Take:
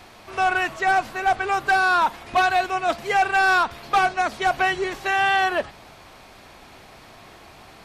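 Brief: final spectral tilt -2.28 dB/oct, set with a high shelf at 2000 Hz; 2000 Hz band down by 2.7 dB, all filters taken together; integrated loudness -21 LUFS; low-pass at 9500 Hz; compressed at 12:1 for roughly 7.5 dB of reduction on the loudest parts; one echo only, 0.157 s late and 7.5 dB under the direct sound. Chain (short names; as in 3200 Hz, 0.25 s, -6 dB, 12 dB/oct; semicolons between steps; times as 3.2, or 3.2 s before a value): LPF 9500 Hz; high shelf 2000 Hz +7 dB; bell 2000 Hz -8.5 dB; compressor 12:1, threshold -23 dBFS; echo 0.157 s -7.5 dB; gain +6 dB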